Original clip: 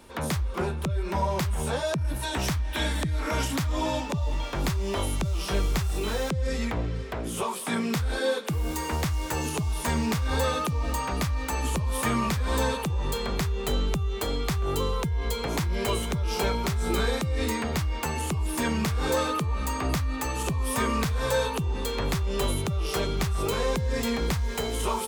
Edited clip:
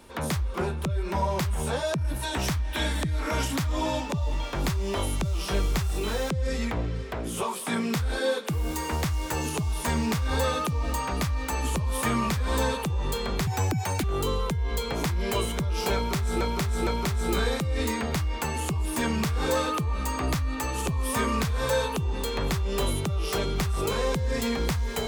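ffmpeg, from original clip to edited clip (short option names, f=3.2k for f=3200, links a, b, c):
-filter_complex "[0:a]asplit=5[a][b][c][d][e];[a]atrim=end=13.474[f];[b]atrim=start=13.47:end=14.57,asetpts=PTS-STARTPTS,asetrate=85554,aresample=44100,atrim=end_sample=25005,asetpts=PTS-STARTPTS[g];[c]atrim=start=14.566:end=16.942[h];[d]atrim=start=16.478:end=16.942[i];[e]atrim=start=16.478[j];[f][g]acrossfade=d=0.004:c1=hsin:c2=hsin[k];[k][h]acrossfade=d=0.004:c1=hsin:c2=hsin[l];[l][i]acrossfade=d=0.004:c1=hsin:c2=hsin[m];[m][j]acrossfade=d=0.004:c1=hsin:c2=hsin"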